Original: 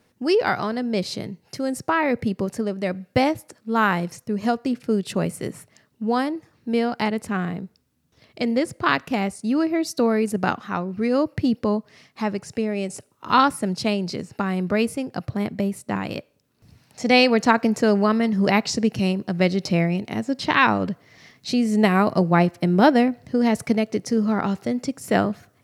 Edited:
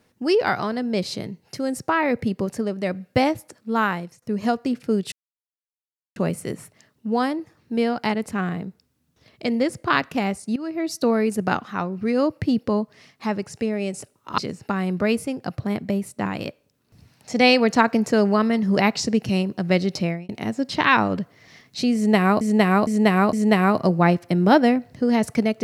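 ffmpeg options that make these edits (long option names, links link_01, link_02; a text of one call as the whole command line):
ffmpeg -i in.wav -filter_complex "[0:a]asplit=9[link_01][link_02][link_03][link_04][link_05][link_06][link_07][link_08][link_09];[link_01]atrim=end=4.22,asetpts=PTS-STARTPTS,afade=type=out:start_time=3.71:duration=0.51:silence=0.11885[link_10];[link_02]atrim=start=4.22:end=5.12,asetpts=PTS-STARTPTS,afade=type=in:duration=0.004:curve=hsin:silence=0.11885,afade=type=out:start_time=0.896:duration=0.004:curve=hsin,apad=pad_dur=1.04[link_11];[link_03]atrim=start=5.12:end=9.52,asetpts=PTS-STARTPTS,afade=type=in:duration=0.004:curve=hsin,afade=type=out:start_time=4.396:duration=0.004:curve=hsin:silence=0.158489[link_12];[link_04]atrim=start=9.52:end=13.342,asetpts=PTS-STARTPTS,afade=type=in:duration=0.4:silence=0.158489[link_13];[link_05]atrim=start=14.078:end=19.99,asetpts=PTS-STARTPTS,afade=type=out:start_time=5.572:duration=0.34[link_14];[link_06]atrim=start=19.99:end=22.112,asetpts=PTS-STARTPTS,afade=type=in:duration=0.004:curve=hsin[link_15];[link_07]atrim=start=21.648:end=22.112[link_16];[link_08]atrim=start=21.648:end=22.112[link_17];[link_09]atrim=start=21.648[link_18];[link_10][link_11][link_12][link_13]concat=n=4:v=0:a=1[link_19];[link_14][link_15]concat=n=2:v=0:a=1[link_20];[link_19][link_20]acrossfade=duration=0.004:curve1=hsin:curve2=hsin[link_21];[link_21][link_16]acrossfade=duration=0.004:curve1=hsin:curve2=hsin[link_22];[link_22][link_17]acrossfade=duration=0.004:curve1=hsin:curve2=hsin[link_23];[link_23][link_18]acrossfade=duration=0.004:curve1=hsin:curve2=hsin" out.wav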